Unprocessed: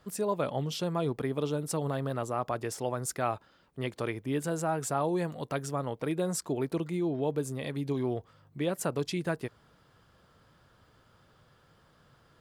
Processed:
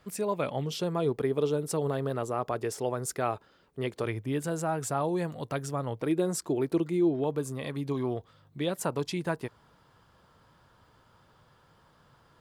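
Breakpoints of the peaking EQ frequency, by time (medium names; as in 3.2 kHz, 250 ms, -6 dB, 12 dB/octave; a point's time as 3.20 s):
peaking EQ +7 dB 0.38 oct
2.3 kHz
from 0.66 s 420 Hz
from 4.04 s 110 Hz
from 6.01 s 340 Hz
from 7.24 s 1.1 kHz
from 8.18 s 3.7 kHz
from 8.79 s 940 Hz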